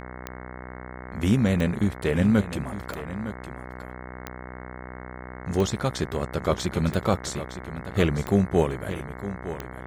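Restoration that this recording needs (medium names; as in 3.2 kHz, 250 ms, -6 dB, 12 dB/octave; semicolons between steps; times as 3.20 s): de-click; de-hum 62.6 Hz, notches 35; inverse comb 910 ms -12.5 dB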